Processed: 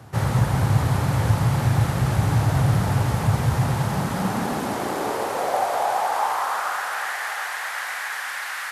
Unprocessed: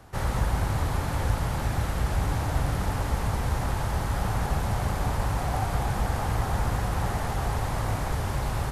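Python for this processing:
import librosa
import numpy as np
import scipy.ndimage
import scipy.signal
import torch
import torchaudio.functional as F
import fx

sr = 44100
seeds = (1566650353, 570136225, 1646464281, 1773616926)

y = fx.filter_sweep_highpass(x, sr, from_hz=120.0, to_hz=1700.0, start_s=3.59, end_s=7.09, q=2.9)
y = fx.echo_thinned(y, sr, ms=369, feedback_pct=77, hz=280.0, wet_db=-11.0)
y = y * 10.0 ** (4.0 / 20.0)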